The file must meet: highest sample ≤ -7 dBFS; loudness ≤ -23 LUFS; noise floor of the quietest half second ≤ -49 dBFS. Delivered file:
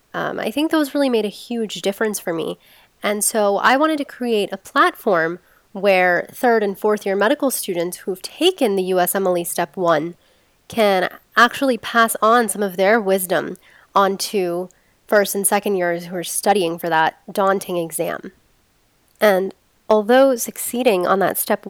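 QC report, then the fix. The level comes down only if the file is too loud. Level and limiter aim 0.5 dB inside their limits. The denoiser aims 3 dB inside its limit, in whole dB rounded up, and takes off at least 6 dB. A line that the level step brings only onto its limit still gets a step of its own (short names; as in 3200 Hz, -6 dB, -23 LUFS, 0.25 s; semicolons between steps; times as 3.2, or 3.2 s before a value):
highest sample -3.5 dBFS: fail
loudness -18.5 LUFS: fail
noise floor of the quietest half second -60 dBFS: OK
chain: gain -5 dB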